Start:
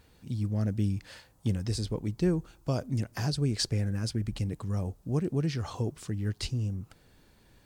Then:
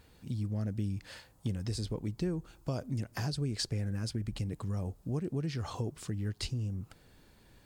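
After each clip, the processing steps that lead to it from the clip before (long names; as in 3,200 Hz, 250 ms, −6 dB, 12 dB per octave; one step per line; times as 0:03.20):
notch filter 5,900 Hz, Q 23
downward compressor 2.5 to 1, threshold −33 dBFS, peak gain reduction 8 dB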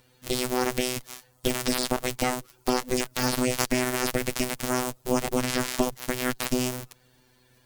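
spectral envelope flattened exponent 0.6
phases set to zero 126 Hz
harmonic generator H 4 −8 dB, 8 −6 dB, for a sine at −12.5 dBFS
level +6 dB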